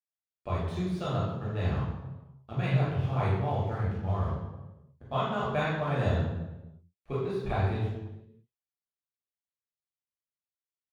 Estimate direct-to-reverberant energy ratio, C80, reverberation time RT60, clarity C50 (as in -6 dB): -8.0 dB, 3.0 dB, 1.1 s, -0.5 dB